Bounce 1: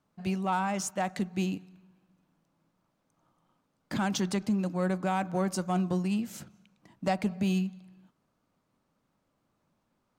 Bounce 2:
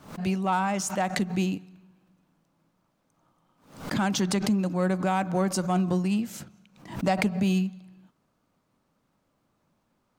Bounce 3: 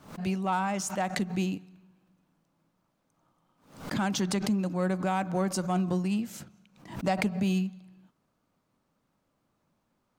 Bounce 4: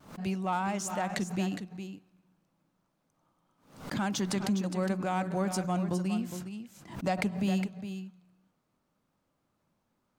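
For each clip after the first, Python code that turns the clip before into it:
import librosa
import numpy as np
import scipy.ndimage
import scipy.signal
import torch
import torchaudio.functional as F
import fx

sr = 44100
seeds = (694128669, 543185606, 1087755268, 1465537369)

y1 = fx.pre_swell(x, sr, db_per_s=110.0)
y1 = F.gain(torch.from_numpy(y1), 3.5).numpy()
y2 = fx.attack_slew(y1, sr, db_per_s=340.0)
y2 = F.gain(torch.from_numpy(y2), -3.0).numpy()
y3 = fx.vibrato(y2, sr, rate_hz=1.5, depth_cents=40.0)
y3 = y3 + 10.0 ** (-9.5 / 20.0) * np.pad(y3, (int(411 * sr / 1000.0), 0))[:len(y3)]
y3 = F.gain(torch.from_numpy(y3), -2.5).numpy()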